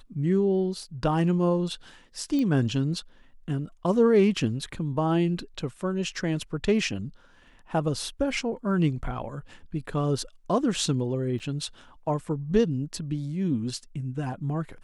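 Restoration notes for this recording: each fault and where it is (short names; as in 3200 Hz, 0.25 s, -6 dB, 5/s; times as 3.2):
2.39 pop -18 dBFS
11.39–11.4 gap 7.9 ms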